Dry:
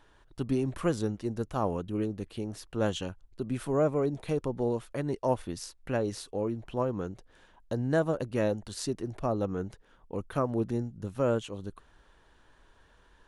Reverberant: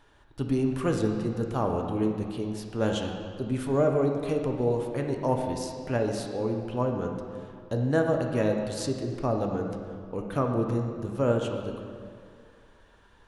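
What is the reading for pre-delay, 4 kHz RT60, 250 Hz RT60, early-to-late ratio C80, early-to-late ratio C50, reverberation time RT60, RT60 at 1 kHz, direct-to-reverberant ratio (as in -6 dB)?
3 ms, 1.6 s, 2.2 s, 5.5 dB, 4.0 dB, 2.2 s, 2.1 s, 2.0 dB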